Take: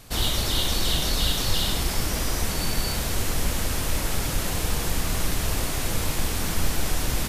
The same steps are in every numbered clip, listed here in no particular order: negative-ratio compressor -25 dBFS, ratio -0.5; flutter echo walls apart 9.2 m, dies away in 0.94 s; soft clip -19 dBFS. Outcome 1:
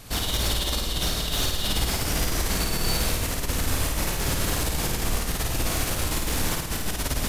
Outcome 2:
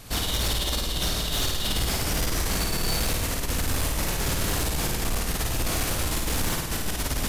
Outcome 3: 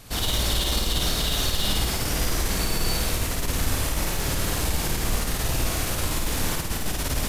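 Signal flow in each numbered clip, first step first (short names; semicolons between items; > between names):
negative-ratio compressor > soft clip > flutter echo; negative-ratio compressor > flutter echo > soft clip; soft clip > negative-ratio compressor > flutter echo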